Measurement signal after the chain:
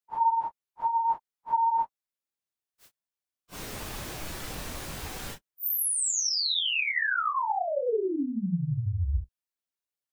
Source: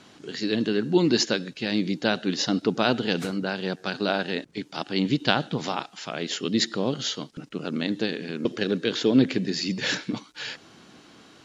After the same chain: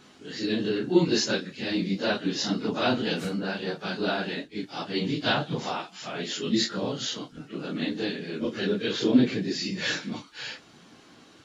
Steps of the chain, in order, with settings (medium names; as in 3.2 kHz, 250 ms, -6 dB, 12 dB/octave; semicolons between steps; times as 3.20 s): phase randomisation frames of 100 ms; trim -2 dB